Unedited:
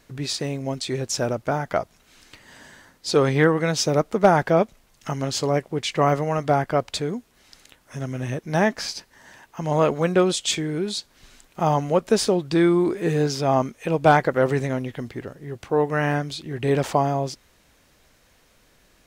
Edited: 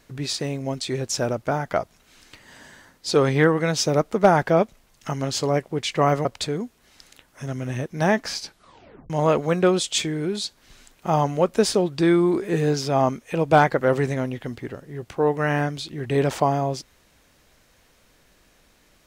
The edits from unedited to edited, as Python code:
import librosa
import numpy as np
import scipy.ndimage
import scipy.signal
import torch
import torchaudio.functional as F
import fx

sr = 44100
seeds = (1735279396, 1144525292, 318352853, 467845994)

y = fx.edit(x, sr, fx.cut(start_s=6.25, length_s=0.53),
    fx.tape_stop(start_s=8.96, length_s=0.67), tone=tone)